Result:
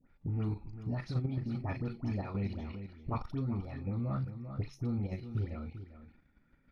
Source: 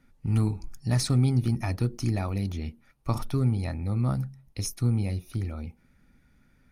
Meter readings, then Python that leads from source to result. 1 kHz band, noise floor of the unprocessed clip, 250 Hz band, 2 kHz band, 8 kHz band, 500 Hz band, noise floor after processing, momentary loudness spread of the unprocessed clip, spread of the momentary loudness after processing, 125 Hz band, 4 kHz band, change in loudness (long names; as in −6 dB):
−6.0 dB, −63 dBFS, −7.0 dB, −7.5 dB, below −25 dB, −7.0 dB, −70 dBFS, 12 LU, 9 LU, −9.5 dB, −17.5 dB, −9.0 dB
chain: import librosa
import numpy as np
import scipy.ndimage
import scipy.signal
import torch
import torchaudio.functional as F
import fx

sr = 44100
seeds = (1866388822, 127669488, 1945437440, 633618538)

p1 = fx.spec_quant(x, sr, step_db=15)
p2 = fx.air_absorb(p1, sr, metres=290.0)
p3 = fx.doubler(p2, sr, ms=38.0, db=-12.0)
p4 = fx.dispersion(p3, sr, late='highs', ms=79.0, hz=1300.0)
p5 = fx.level_steps(p4, sr, step_db=10)
p6 = fx.low_shelf(p5, sr, hz=160.0, db=-5.5)
p7 = p6 + fx.echo_single(p6, sr, ms=394, db=-12.5, dry=0)
p8 = fx.rider(p7, sr, range_db=4, speed_s=0.5)
y = fx.transformer_sat(p8, sr, knee_hz=110.0)